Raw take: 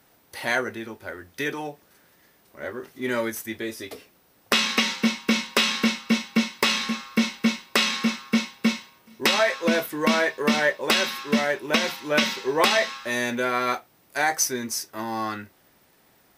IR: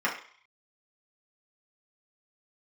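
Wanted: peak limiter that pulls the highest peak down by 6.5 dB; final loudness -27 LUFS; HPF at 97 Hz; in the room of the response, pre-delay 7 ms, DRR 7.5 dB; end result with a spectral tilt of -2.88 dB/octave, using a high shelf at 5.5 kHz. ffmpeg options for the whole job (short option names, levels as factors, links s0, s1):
-filter_complex "[0:a]highpass=97,highshelf=f=5500:g=-4.5,alimiter=limit=0.211:level=0:latency=1,asplit=2[s0][s1];[1:a]atrim=start_sample=2205,adelay=7[s2];[s1][s2]afir=irnorm=-1:irlink=0,volume=0.106[s3];[s0][s3]amix=inputs=2:normalize=0,volume=0.891"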